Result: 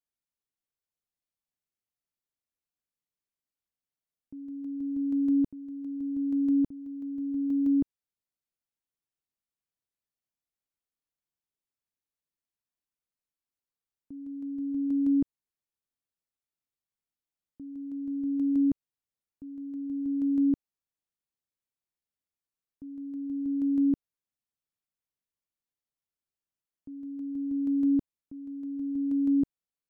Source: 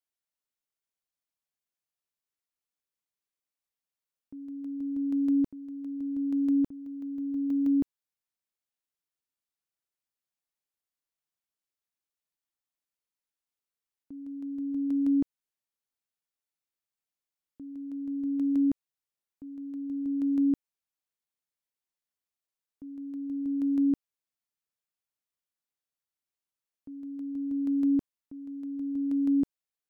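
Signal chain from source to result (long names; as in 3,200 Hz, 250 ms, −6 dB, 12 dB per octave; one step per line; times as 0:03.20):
low-shelf EQ 410 Hz +9.5 dB
level −6 dB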